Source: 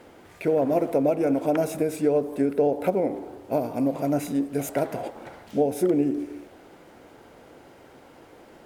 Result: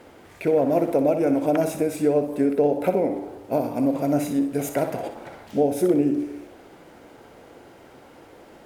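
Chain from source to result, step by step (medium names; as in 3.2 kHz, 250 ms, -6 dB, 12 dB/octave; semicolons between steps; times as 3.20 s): flutter echo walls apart 10.5 m, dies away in 0.39 s; trim +1.5 dB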